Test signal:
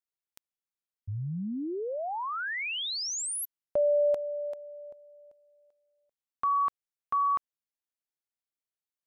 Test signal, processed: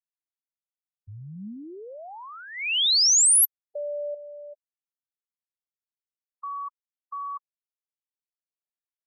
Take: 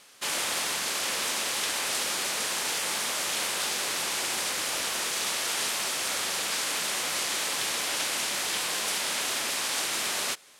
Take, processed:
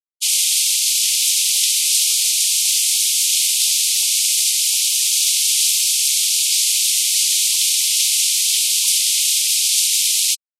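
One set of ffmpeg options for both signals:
ffmpeg -i in.wav -af "aexciter=amount=13.1:drive=1.1:freq=2500,afftfilt=real='re*gte(hypot(re,im),0.0891)':imag='im*gte(hypot(re,im),0.0891)':win_size=1024:overlap=0.75,equalizer=frequency=210:width_type=o:width=0.41:gain=4.5,volume=-7dB" out.wav

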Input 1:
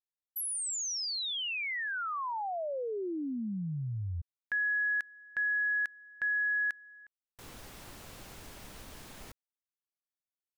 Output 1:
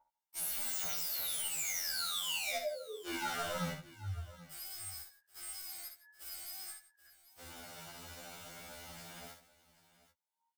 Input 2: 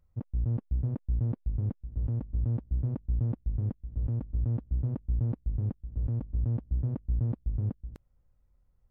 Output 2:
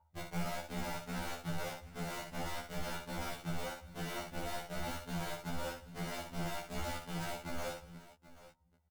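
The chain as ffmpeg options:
ffmpeg -i in.wav -filter_complex "[0:a]highpass=frequency=140:poles=1,adynamicequalizer=threshold=0.00141:dfrequency=510:dqfactor=1.8:tfrequency=510:tqfactor=1.8:attack=5:release=100:ratio=0.4:range=3:mode=cutabove:tftype=bell,aeval=exprs='val(0)+0.00112*sin(2*PI*910*n/s)':channel_layout=same,aeval=exprs='(mod(53.1*val(0)+1,2)-1)/53.1':channel_layout=same,flanger=delay=15:depth=3.2:speed=1.6,asplit=2[link_01][link_02];[link_02]adelay=13,volume=-4dB[link_03];[link_01][link_03]amix=inputs=2:normalize=0,asplit=2[link_04][link_05];[link_05]aecho=0:1:60|160|782:0.473|0.119|0.141[link_06];[link_04][link_06]amix=inputs=2:normalize=0,afftfilt=real='re*2*eq(mod(b,4),0)':imag='im*2*eq(mod(b,4),0)':win_size=2048:overlap=0.75,volume=3.5dB" out.wav

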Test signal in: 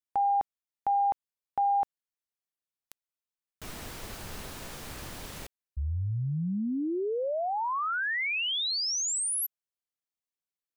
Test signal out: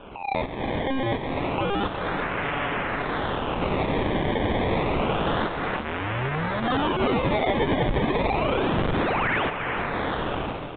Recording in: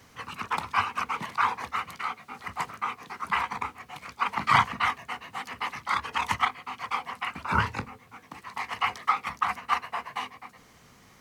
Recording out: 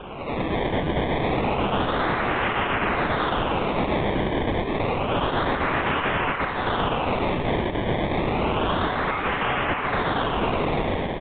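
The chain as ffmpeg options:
ffmpeg -i in.wav -af "aeval=exprs='val(0)+0.5*0.0841*sgn(val(0))':channel_layout=same,agate=range=-12dB:threshold=-26dB:ratio=3:release=78:detection=rms,highpass=350,aecho=1:1:7:0.5,acompressor=threshold=-26dB:ratio=20:attack=6.6:release=861:knee=1:detection=peak,alimiter=level_in=4dB:limit=-24dB:level=0:latency=1:release=275,volume=-4dB,dynaudnorm=framelen=100:gausssize=7:maxgain=15dB,acrusher=samples=22:mix=1:aa=0.000001:lfo=1:lforange=22:lforate=0.29,aeval=exprs='(mod(8.41*val(0)+1,2)-1)/8.41':channel_layout=same,aecho=1:1:365:0.355,aresample=8000,aresample=44100" out.wav

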